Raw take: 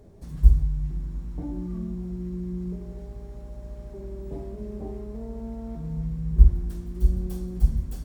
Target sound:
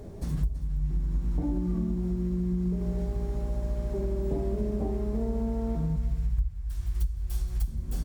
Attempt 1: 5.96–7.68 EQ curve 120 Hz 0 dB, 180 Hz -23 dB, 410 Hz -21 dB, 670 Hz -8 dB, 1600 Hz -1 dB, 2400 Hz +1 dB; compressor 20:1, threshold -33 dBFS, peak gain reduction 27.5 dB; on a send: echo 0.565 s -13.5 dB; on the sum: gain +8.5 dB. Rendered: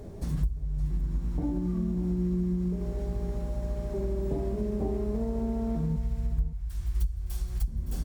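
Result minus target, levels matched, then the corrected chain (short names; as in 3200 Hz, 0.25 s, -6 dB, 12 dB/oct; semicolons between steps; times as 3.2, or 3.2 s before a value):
echo 0.236 s late
5.96–7.68 EQ curve 120 Hz 0 dB, 180 Hz -23 dB, 410 Hz -21 dB, 670 Hz -8 dB, 1600 Hz -1 dB, 2400 Hz +1 dB; compressor 20:1, threshold -33 dBFS, peak gain reduction 27.5 dB; on a send: echo 0.329 s -13.5 dB; on the sum: gain +8.5 dB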